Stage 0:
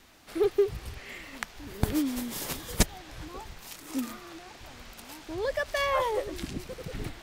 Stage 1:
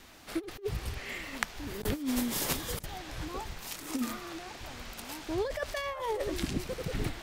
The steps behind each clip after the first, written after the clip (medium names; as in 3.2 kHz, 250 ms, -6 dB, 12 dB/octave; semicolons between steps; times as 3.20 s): compressor with a negative ratio -31 dBFS, ratio -0.5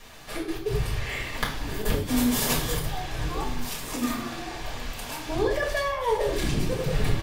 one-sided wavefolder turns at -20.5 dBFS; echo from a far wall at 230 m, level -16 dB; reverberation RT60 0.60 s, pre-delay 4 ms, DRR -4.5 dB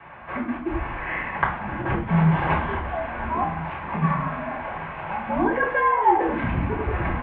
ten-band graphic EQ 125 Hz +5 dB, 500 Hz -7 dB, 1 kHz +8 dB; mistuned SSB -83 Hz 170–2500 Hz; distance through air 190 m; trim +6 dB